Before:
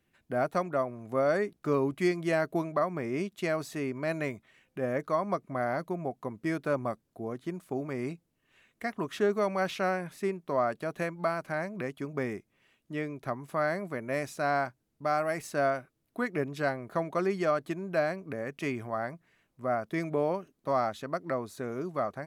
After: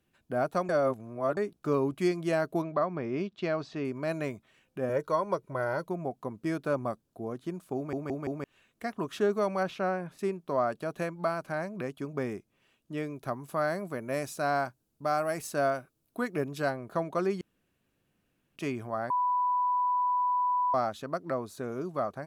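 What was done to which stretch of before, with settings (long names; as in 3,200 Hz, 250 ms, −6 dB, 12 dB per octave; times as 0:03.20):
0:00.69–0:01.37: reverse
0:02.62–0:03.85: low-pass filter 4,800 Hz 24 dB per octave
0:04.89–0:05.87: comb filter 2.1 ms, depth 67%
0:07.76: stutter in place 0.17 s, 4 plays
0:09.63–0:10.19: high-shelf EQ 3,400 Hz −11.5 dB
0:12.97–0:16.71: high-shelf EQ 7,400 Hz +7 dB
0:17.41–0:18.56: fill with room tone
0:19.10–0:20.74: beep over 991 Hz −24 dBFS
whole clip: parametric band 2,000 Hz −7 dB 0.36 octaves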